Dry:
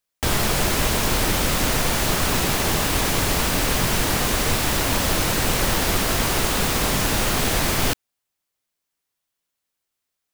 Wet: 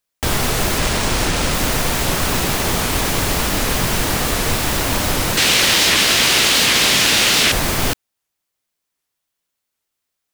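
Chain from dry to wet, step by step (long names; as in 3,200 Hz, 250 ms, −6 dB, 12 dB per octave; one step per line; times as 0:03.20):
0:00.78–0:01.54: bad sample-rate conversion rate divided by 3×, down none, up hold
0:05.37–0:07.52: meter weighting curve D
wow of a warped record 78 rpm, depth 250 cents
level +2.5 dB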